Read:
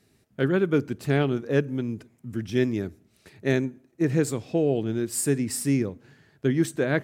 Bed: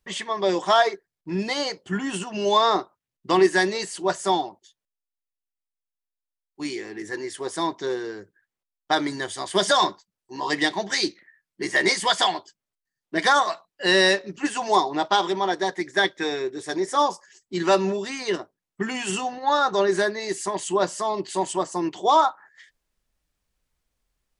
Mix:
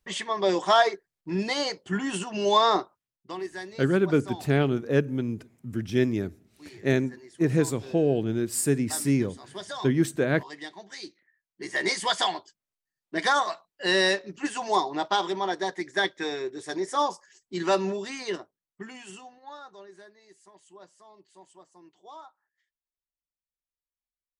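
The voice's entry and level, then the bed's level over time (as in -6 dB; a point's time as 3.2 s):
3.40 s, 0.0 dB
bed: 2.99 s -1.5 dB
3.36 s -17.5 dB
10.96 s -17.5 dB
11.98 s -4.5 dB
18.21 s -4.5 dB
19.91 s -28 dB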